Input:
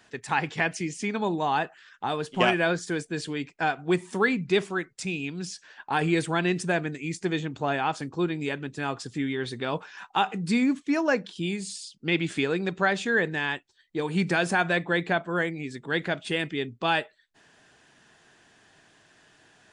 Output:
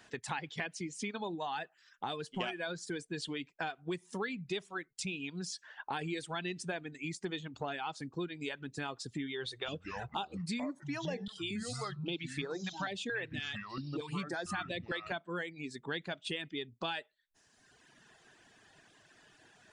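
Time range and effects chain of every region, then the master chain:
9.46–15.12 echoes that change speed 0.192 s, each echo -5 st, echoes 2, each echo -6 dB + stepped notch 4.4 Hz 220–2800 Hz
whole clip: reverb removal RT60 1.2 s; dynamic EQ 3500 Hz, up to +7 dB, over -48 dBFS, Q 1.9; compressor 4:1, threshold -36 dBFS; gain -1 dB

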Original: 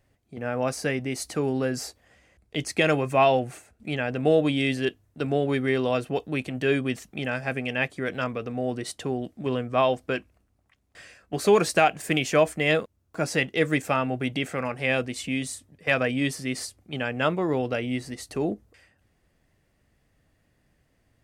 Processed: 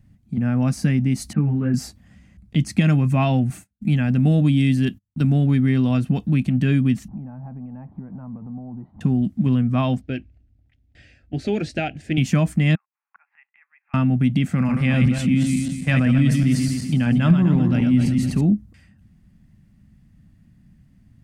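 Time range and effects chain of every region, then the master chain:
1.33–1.74 LPF 2400 Hz 24 dB/oct + ensemble effect
3.5–5.46 gate -53 dBFS, range -33 dB + high shelf 8900 Hz +9.5 dB
7.08–9.01 zero-crossing step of -38.5 dBFS + compressor 2:1, threshold -37 dBFS + ladder low-pass 960 Hz, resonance 65%
10.01–12.18 LPF 3500 Hz + fixed phaser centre 450 Hz, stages 4
12.75–13.94 Chebyshev band-pass 820–2500 Hz, order 4 + flipped gate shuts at -35 dBFS, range -26 dB
14.56–18.41 regenerating reverse delay 0.125 s, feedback 50%, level -5 dB + sustainer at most 45 dB/s
whole clip: resonant low shelf 300 Hz +13.5 dB, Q 3; compressor 2:1, threshold -16 dBFS

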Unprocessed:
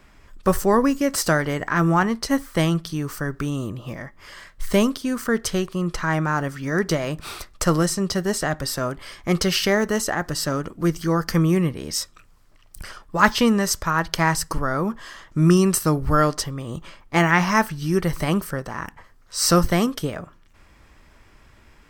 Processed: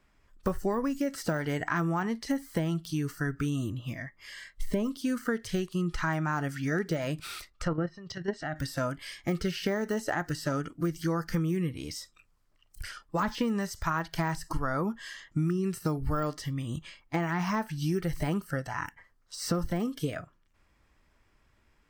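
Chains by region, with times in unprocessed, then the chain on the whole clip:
7.5–8.56 high shelf 5700 Hz -12 dB + level quantiser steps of 10 dB + treble ducked by the level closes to 2000 Hz, closed at -19.5 dBFS
whole clip: de-esser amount 80%; spectral noise reduction 13 dB; compressor 12:1, threshold -23 dBFS; gain -2 dB

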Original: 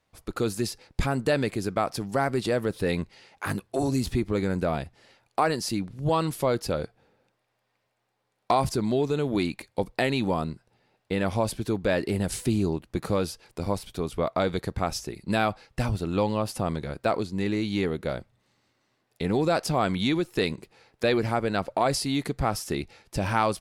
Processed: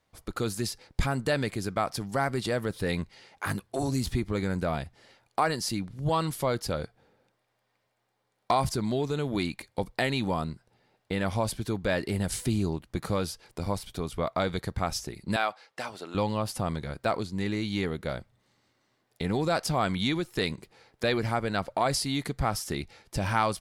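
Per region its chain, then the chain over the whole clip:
15.36–16.15 HPF 510 Hz + high shelf 9500 Hz -9.5 dB
whole clip: notch 2600 Hz, Q 17; dynamic EQ 380 Hz, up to -5 dB, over -39 dBFS, Q 0.73

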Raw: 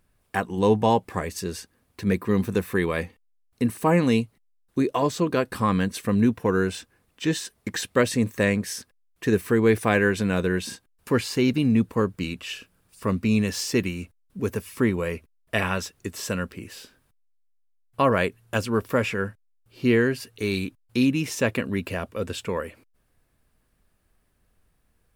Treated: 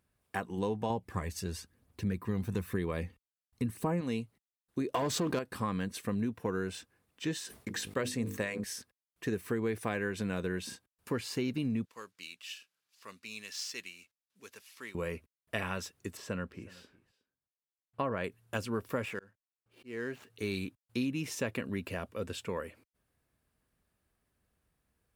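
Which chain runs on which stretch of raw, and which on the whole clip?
0.9–4.01 low shelf 100 Hz +10 dB + phaser 1 Hz, delay 1.5 ms, feedback 37%
4.93–5.39 sample leveller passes 2 + fast leveller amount 50%
7.37–8.64 notches 50/100/150/200/250/300/350/400/450/500 Hz + sustainer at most 120 dB/s
11.85–14.95 median filter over 5 samples + band-pass 5200 Hz, Q 0.66 + high shelf 7000 Hz +9 dB
16.17–18.24 LPF 2500 Hz 6 dB/oct + echo 0.364 s -22 dB
19.05–20.3 median filter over 9 samples + low shelf 200 Hz -10 dB + auto swell 0.407 s
whole clip: HPF 53 Hz; compressor, threshold -21 dBFS; gain -8 dB

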